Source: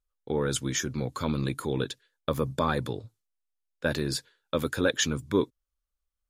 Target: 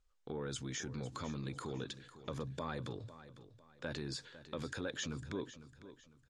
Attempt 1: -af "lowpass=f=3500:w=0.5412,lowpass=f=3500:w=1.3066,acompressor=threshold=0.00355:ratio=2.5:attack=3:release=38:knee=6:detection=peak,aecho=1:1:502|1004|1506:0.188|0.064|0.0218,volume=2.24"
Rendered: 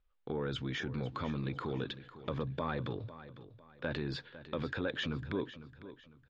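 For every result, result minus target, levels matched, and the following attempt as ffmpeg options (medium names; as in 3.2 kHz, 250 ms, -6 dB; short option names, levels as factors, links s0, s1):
8 kHz band -19.5 dB; compression: peak gain reduction -5 dB
-af "lowpass=f=7800:w=0.5412,lowpass=f=7800:w=1.3066,acompressor=threshold=0.00355:ratio=2.5:attack=3:release=38:knee=6:detection=peak,aecho=1:1:502|1004|1506:0.188|0.064|0.0218,volume=2.24"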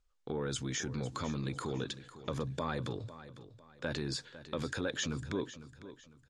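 compression: peak gain reduction -5 dB
-af "lowpass=f=7800:w=0.5412,lowpass=f=7800:w=1.3066,acompressor=threshold=0.00133:ratio=2.5:attack=3:release=38:knee=6:detection=peak,aecho=1:1:502|1004|1506:0.188|0.064|0.0218,volume=2.24"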